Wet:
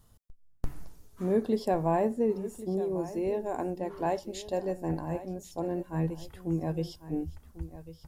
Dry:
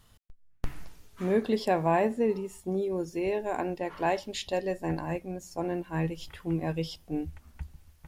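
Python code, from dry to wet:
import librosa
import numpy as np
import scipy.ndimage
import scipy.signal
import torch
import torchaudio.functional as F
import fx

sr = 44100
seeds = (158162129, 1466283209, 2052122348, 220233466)

y = fx.peak_eq(x, sr, hz=2500.0, db=-11.5, octaves=1.9)
y = y + 10.0 ** (-15.0 / 20.0) * np.pad(y, (int(1097 * sr / 1000.0), 0))[:len(y)]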